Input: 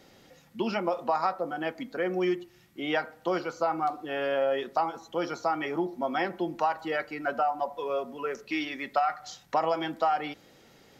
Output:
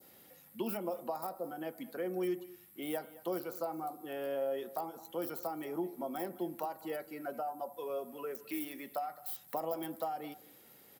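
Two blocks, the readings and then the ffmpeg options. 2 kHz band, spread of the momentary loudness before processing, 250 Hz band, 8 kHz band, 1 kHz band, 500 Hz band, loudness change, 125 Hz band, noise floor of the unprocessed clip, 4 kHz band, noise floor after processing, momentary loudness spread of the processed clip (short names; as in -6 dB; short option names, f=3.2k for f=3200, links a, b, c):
-16.0 dB, 6 LU, -7.0 dB, n/a, -12.5 dB, -8.0 dB, -9.5 dB, -8.0 dB, -58 dBFS, -13.0 dB, -60 dBFS, 7 LU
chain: -filter_complex "[0:a]highpass=f=130:p=1,adynamicequalizer=threshold=0.00794:dfrequency=2500:dqfactor=0.92:tfrequency=2500:tqfactor=0.92:attack=5:release=100:ratio=0.375:range=2:mode=cutabove:tftype=bell,acrossover=split=700|4500[a][b][c];[b]acompressor=threshold=-43dB:ratio=6[d];[c]aeval=exprs='(mod(237*val(0)+1,2)-1)/237':c=same[e];[a][d][e]amix=inputs=3:normalize=0,aexciter=amount=9.4:drive=4.4:freq=8.7k,aecho=1:1:215:0.112,volume=-6dB"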